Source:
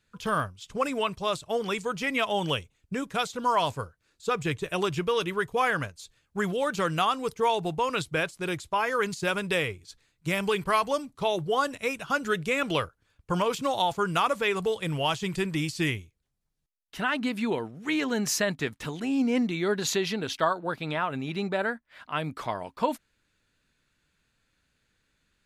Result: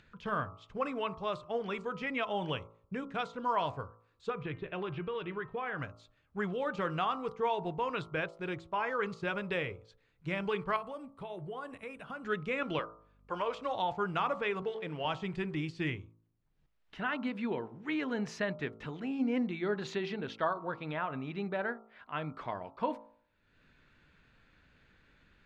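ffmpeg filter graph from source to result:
ffmpeg -i in.wav -filter_complex "[0:a]asettb=1/sr,asplit=3[link_01][link_02][link_03];[link_01]atrim=end=4.304[link_04];[link_02]atrim=start=4.3:end=5.79,asetpts=PTS-STARTPTS,afade=type=in:duration=0.004:curve=qsin,afade=type=out:start_time=1.486:duration=0.004:curve=qsin,lowpass=frequency=4000:width=0.5412,lowpass=frequency=4000:width=1.3066,bandreject=frequency=262.2:width_type=h:width=4,bandreject=frequency=524.4:width_type=h:width=4,bandreject=frequency=786.6:width_type=h:width=4,bandreject=frequency=1048.8:width_type=h:width=4,bandreject=frequency=1311:width_type=h:width=4,bandreject=frequency=1573.2:width_type=h:width=4,bandreject=frequency=1835.4:width_type=h:width=4,bandreject=frequency=2097.6:width_type=h:width=4,bandreject=frequency=2359.8:width_type=h:width=4,bandreject=frequency=2622:width_type=h:width=4,bandreject=frequency=2884.2:width_type=h:width=4,acompressor=threshold=-26dB:ratio=6:attack=3.2:release=140:knee=1:detection=peak[link_05];[link_03]atrim=start=5.786[link_06];[link_04][link_05]acrossfade=duration=0.004:curve1=hsin:curve2=qsin[link_07];[link_07][link_06]acrossfade=duration=0.004:curve1=qsin:curve2=hsin,asettb=1/sr,asplit=3[link_08][link_09][link_10];[link_08]atrim=end=10.764[link_11];[link_09]atrim=start=10.76:end=12.24,asetpts=PTS-STARTPTS,afade=type=in:duration=0.004:curve=qsin,afade=type=out:start_time=1.476:duration=0.004:curve=qsin,acompressor=threshold=-34dB:ratio=3:attack=3.2:release=140:knee=1:detection=peak,highshelf=frequency=7500:width_type=q:width=3:gain=8.5[link_12];[link_10]atrim=start=12.236[link_13];[link_11][link_12]acrossfade=duration=0.004:curve1=hsin:curve2=qsin[link_14];[link_14][link_13]acrossfade=duration=0.004:curve1=qsin:curve2=hsin,asettb=1/sr,asplit=3[link_15][link_16][link_17];[link_15]atrim=end=12.794[link_18];[link_16]atrim=start=12.79:end=13.75,asetpts=PTS-STARTPTS,afade=type=in:duration=0.004:curve=qsin,afade=type=out:start_time=0.956:duration=0.004:curve=qsin,highpass=370,aeval=exprs='val(0)+0.001*(sin(2*PI*50*n/s)+sin(2*PI*2*50*n/s)/2+sin(2*PI*3*50*n/s)/3+sin(2*PI*4*50*n/s)/4+sin(2*PI*5*50*n/s)/5)':channel_layout=same[link_19];[link_17]atrim=start=13.746[link_20];[link_18][link_19]acrossfade=duration=0.004:curve1=hsin:curve2=qsin[link_21];[link_21][link_20]acrossfade=duration=0.004:curve1=qsin:curve2=hsin,asettb=1/sr,asplit=3[link_22][link_23][link_24];[link_22]atrim=end=14.624[link_25];[link_23]atrim=start=14.62:end=15.05,asetpts=PTS-STARTPTS,afade=type=in:duration=0.004:curve=qsin,afade=type=out:start_time=0.426:duration=0.004:curve=qsin,aeval=exprs='sgn(val(0))*max(abs(val(0))-0.00299,0)':channel_layout=same,highpass=190,lowpass=7100[link_26];[link_24]atrim=start=15.046[link_27];[link_25][link_26]acrossfade=duration=0.004:curve1=hsin:curve2=qsin[link_28];[link_28][link_27]acrossfade=duration=0.004:curve1=qsin:curve2=hsin,lowpass=2600,bandreject=frequency=55.14:width_type=h:width=4,bandreject=frequency=110.28:width_type=h:width=4,bandreject=frequency=165.42:width_type=h:width=4,bandreject=frequency=220.56:width_type=h:width=4,bandreject=frequency=275.7:width_type=h:width=4,bandreject=frequency=330.84:width_type=h:width=4,bandreject=frequency=385.98:width_type=h:width=4,bandreject=frequency=441.12:width_type=h:width=4,bandreject=frequency=496.26:width_type=h:width=4,bandreject=frequency=551.4:width_type=h:width=4,bandreject=frequency=606.54:width_type=h:width=4,bandreject=frequency=661.68:width_type=h:width=4,bandreject=frequency=716.82:width_type=h:width=4,bandreject=frequency=771.96:width_type=h:width=4,bandreject=frequency=827.1:width_type=h:width=4,bandreject=frequency=882.24:width_type=h:width=4,bandreject=frequency=937.38:width_type=h:width=4,bandreject=frequency=992.52:width_type=h:width=4,bandreject=frequency=1047.66:width_type=h:width=4,bandreject=frequency=1102.8:width_type=h:width=4,bandreject=frequency=1157.94:width_type=h:width=4,bandreject=frequency=1213.08:width_type=h:width=4,bandreject=frequency=1268.22:width_type=h:width=4,bandreject=frequency=1323.36:width_type=h:width=4,bandreject=frequency=1378.5:width_type=h:width=4,acompressor=mode=upward:threshold=-44dB:ratio=2.5,volume=-6dB" out.wav

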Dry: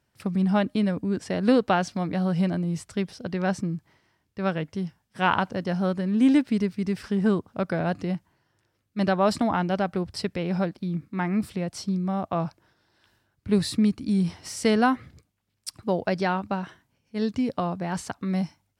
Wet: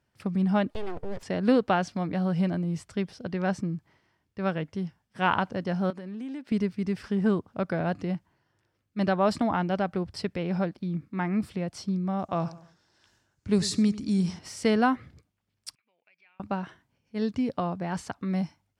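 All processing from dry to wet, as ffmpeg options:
ffmpeg -i in.wav -filter_complex "[0:a]asettb=1/sr,asplit=3[link_01][link_02][link_03];[link_01]atrim=end=0.704[link_04];[link_02]atrim=start=0.7:end=1.23,asetpts=PTS-STARTPTS,afade=type=in:duration=0.004:curve=qsin,afade=type=out:start_time=0.526:duration=0.004:curve=qsin,acompressor=threshold=-26dB:ratio=2.5:attack=3.2:release=140:knee=1:detection=peak,aeval=exprs='abs(val(0))':channel_layout=same[link_05];[link_03]atrim=start=1.226[link_06];[link_04][link_05]acrossfade=duration=0.004:curve1=hsin:curve2=qsin[link_07];[link_07][link_06]acrossfade=duration=0.004:curve1=qsin:curve2=hsin,asettb=1/sr,asplit=3[link_08][link_09][link_10];[link_08]atrim=end=5.904[link_11];[link_09]atrim=start=5.9:end=6.52,asetpts=PTS-STARTPTS,afade=type=in:duration=0.004:curve=qsin,afade=type=out:start_time=0.616:duration=0.004:curve=qsin,highpass=230,acompressor=threshold=-33dB:ratio=6:attack=3.2:release=140:knee=1:detection=peak[link_12];[link_10]atrim=start=6.516[link_13];[link_11][link_12]acrossfade=duration=0.004:curve1=hsin:curve2=qsin[link_14];[link_14][link_13]acrossfade=duration=0.004:curve1=qsin:curve2=hsin,asettb=1/sr,asplit=3[link_15][link_16][link_17];[link_15]atrim=end=12.194[link_18];[link_16]atrim=start=12.19:end=14.39,asetpts=PTS-STARTPTS,afade=type=in:duration=0.004:curve=qsin,afade=type=out:start_time=2.196:duration=0.004:curve=qsin,equalizer=frequency=6700:width_type=o:width=0.87:gain=14,asplit=2[link_19][link_20];[link_20]adelay=96,lowpass=frequency=4300:poles=1,volume=-16dB,asplit=2[link_21][link_22];[link_22]adelay=96,lowpass=frequency=4300:poles=1,volume=0.37,asplit=2[link_23][link_24];[link_24]adelay=96,lowpass=frequency=4300:poles=1,volume=0.37[link_25];[link_19][link_21][link_23][link_25]amix=inputs=4:normalize=0,atrim=end_sample=97020[link_26];[link_17]atrim=start=14.386[link_27];[link_18][link_26]acrossfade=duration=0.004:curve1=hsin:curve2=qsin[link_28];[link_28][link_27]acrossfade=duration=0.004:curve1=qsin:curve2=hsin,asettb=1/sr,asplit=3[link_29][link_30][link_31];[link_29]atrim=end=15.754[link_32];[link_30]atrim=start=15.75:end=16.4,asetpts=PTS-STARTPTS,afade=type=in:duration=0.004:curve=qsin,afade=type=out:start_time=0.646:duration=0.004:curve=qsin,acompressor=threshold=-32dB:ratio=12:attack=3.2:release=140:knee=1:detection=peak,bandpass=frequency=2400:width_type=q:width=12[link_33];[link_31]atrim=start=16.396[link_34];[link_32][link_33]acrossfade=duration=0.004:curve1=hsin:curve2=qsin[link_35];[link_35][link_34]acrossfade=duration=0.004:curve1=qsin:curve2=hsin,highshelf=frequency=7400:gain=-8.5,bandreject=frequency=3900:width=29,volume=-2dB" out.wav

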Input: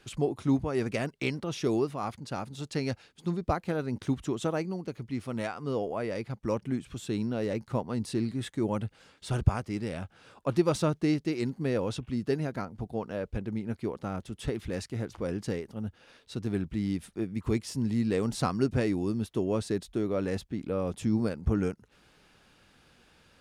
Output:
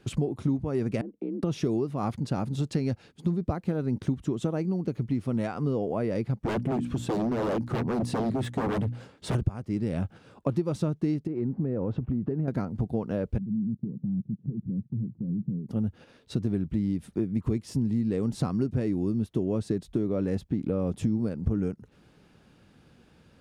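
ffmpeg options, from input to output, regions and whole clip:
ffmpeg -i in.wav -filter_complex "[0:a]asettb=1/sr,asplit=3[link_01][link_02][link_03];[link_01]atrim=end=1.014[link_04];[link_02]atrim=start=1.01:end=1.43,asetpts=PTS-STARTPTS,afade=type=in:duration=0.004:curve=qsin,afade=type=out:start_time=0.416:duration=0.004:curve=qsin,bandpass=frequency=260:width_type=q:width=1.9,acompressor=threshold=-43dB:ratio=3:attack=3.2:release=140:knee=1:detection=peak,afreqshift=51[link_05];[link_03]atrim=start=1.426[link_06];[link_04][link_05]acrossfade=duration=0.004:curve1=hsin:curve2=qsin[link_07];[link_07][link_06]acrossfade=duration=0.004:curve1=qsin:curve2=hsin,asettb=1/sr,asplit=3[link_08][link_09][link_10];[link_08]atrim=end=6.444[link_11];[link_09]atrim=start=6.44:end=9.35,asetpts=PTS-STARTPTS,afade=type=in:duration=0.004:curve=qsin,afade=type=out:start_time=2.906:duration=0.004:curve=qsin,bandreject=frequency=60:width_type=h:width=6,bandreject=frequency=120:width_type=h:width=6,bandreject=frequency=180:width_type=h:width=6,bandreject=frequency=240:width_type=h:width=6,bandreject=frequency=300:width_type=h:width=6,aeval=exprs='0.0251*(abs(mod(val(0)/0.0251+3,4)-2)-1)':channel_layout=same,equalizer=frequency=670:width_type=o:width=2.7:gain=5[link_12];[link_10]atrim=start=9.346[link_13];[link_11][link_12]acrossfade=duration=0.004:curve1=hsin:curve2=qsin[link_14];[link_14][link_13]acrossfade=duration=0.004:curve1=qsin:curve2=hsin,asettb=1/sr,asplit=3[link_15][link_16][link_17];[link_15]atrim=end=11.274[link_18];[link_16]atrim=start=11.27:end=12.48,asetpts=PTS-STARTPTS,afade=type=in:duration=0.004:curve=qsin,afade=type=out:start_time=1.206:duration=0.004:curve=qsin,lowpass=1300,acompressor=threshold=-35dB:ratio=5:attack=3.2:release=140:knee=1:detection=peak[link_19];[link_17]atrim=start=12.476[link_20];[link_18][link_19]acrossfade=duration=0.004:curve1=hsin:curve2=qsin[link_21];[link_21][link_20]acrossfade=duration=0.004:curve1=qsin:curve2=hsin,asettb=1/sr,asplit=3[link_22][link_23][link_24];[link_22]atrim=end=13.384[link_25];[link_23]atrim=start=13.38:end=15.69,asetpts=PTS-STARTPTS,afade=type=in:duration=0.004:curve=qsin,afade=type=out:start_time=2.306:duration=0.004:curve=qsin,volume=34dB,asoftclip=hard,volume=-34dB,asuperpass=centerf=170:order=4:qfactor=1.7[link_26];[link_24]atrim=start=15.686[link_27];[link_25][link_26]acrossfade=duration=0.004:curve1=hsin:curve2=qsin[link_28];[link_28][link_27]acrossfade=duration=0.004:curve1=qsin:curve2=hsin,agate=range=-6dB:threshold=-52dB:ratio=16:detection=peak,equalizer=frequency=160:width=0.3:gain=13,acompressor=threshold=-26dB:ratio=6,volume=1.5dB" out.wav

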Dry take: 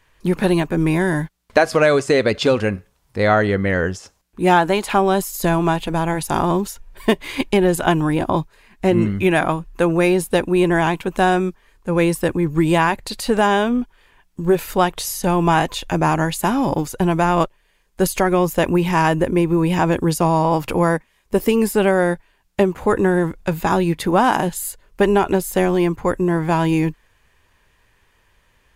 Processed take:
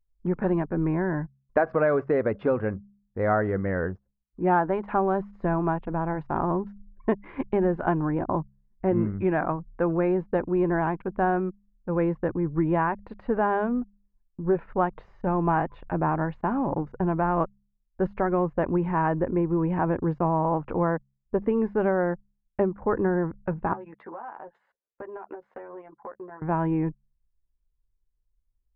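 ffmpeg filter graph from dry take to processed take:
ffmpeg -i in.wav -filter_complex "[0:a]asettb=1/sr,asplit=3[link_01][link_02][link_03];[link_01]atrim=end=23.734[link_04];[link_02]atrim=start=23.73:end=26.42,asetpts=PTS-STARTPTS,afade=type=in:duration=0.004:curve=qsin,afade=type=out:start_time=2.686:duration=0.004:curve=qsin,highpass=570,acompressor=threshold=-28dB:ratio=10:attack=3.2:release=140:knee=1:detection=peak,asplit=2[link_05][link_06];[link_06]adelay=13,volume=-3dB[link_07];[link_05][link_07]amix=inputs=2:normalize=0,atrim=end_sample=118629[link_08];[link_03]atrim=start=26.416[link_09];[link_04][link_08]acrossfade=duration=0.004:curve1=hsin:curve2=qsin[link_10];[link_10][link_09]acrossfade=duration=0.004:curve1=qsin:curve2=hsin,anlmdn=15.8,lowpass=frequency=1600:width=0.5412,lowpass=frequency=1600:width=1.3066,bandreject=frequency=67.38:width_type=h:width=4,bandreject=frequency=134.76:width_type=h:width=4,bandreject=frequency=202.14:width_type=h:width=4,volume=-7.5dB" out.wav

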